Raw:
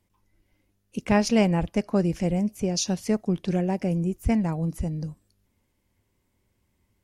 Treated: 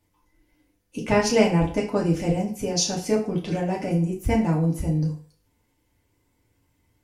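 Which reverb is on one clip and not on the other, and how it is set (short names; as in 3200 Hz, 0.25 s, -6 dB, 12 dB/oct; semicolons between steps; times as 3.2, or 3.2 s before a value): FDN reverb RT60 0.45 s, low-frequency decay 0.8×, high-frequency decay 0.85×, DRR -3.5 dB; gain -1 dB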